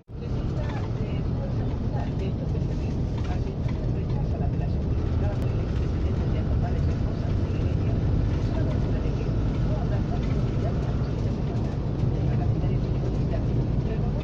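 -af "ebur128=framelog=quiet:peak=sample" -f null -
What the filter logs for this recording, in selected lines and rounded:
Integrated loudness:
  I:         -26.9 LUFS
  Threshold: -36.9 LUFS
Loudness range:
  LRA:         2.1 LU
  Threshold: -46.8 LUFS
  LRA low:   -28.3 LUFS
  LRA high:  -26.1 LUFS
Sample peak:
  Peak:      -13.2 dBFS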